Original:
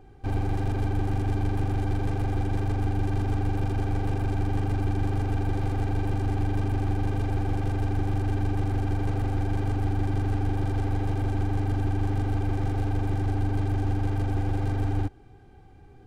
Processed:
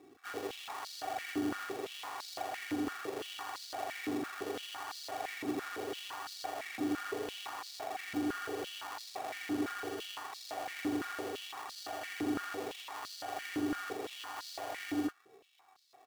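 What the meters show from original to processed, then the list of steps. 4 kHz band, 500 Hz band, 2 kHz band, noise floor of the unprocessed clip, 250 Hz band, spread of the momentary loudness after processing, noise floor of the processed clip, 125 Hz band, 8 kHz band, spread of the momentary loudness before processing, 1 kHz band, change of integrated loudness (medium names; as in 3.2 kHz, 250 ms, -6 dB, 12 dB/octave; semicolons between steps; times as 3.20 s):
+5.0 dB, -6.0 dB, -1.0 dB, -50 dBFS, -7.5 dB, 6 LU, -63 dBFS, -34.0 dB, no reading, 1 LU, -5.5 dB, -11.5 dB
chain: flange 0.82 Hz, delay 2 ms, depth 3.4 ms, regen -73%; sample-and-hold 29×; doubling 33 ms -7 dB; step-sequenced high-pass 5.9 Hz 300–4400 Hz; trim -5 dB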